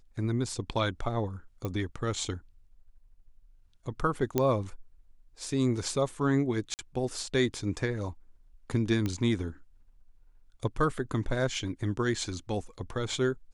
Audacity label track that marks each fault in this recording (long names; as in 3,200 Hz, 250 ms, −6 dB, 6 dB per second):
1.650000	1.650000	click −21 dBFS
4.380000	4.380000	click −12 dBFS
6.740000	6.790000	drop-out 49 ms
9.060000	9.060000	click −18 dBFS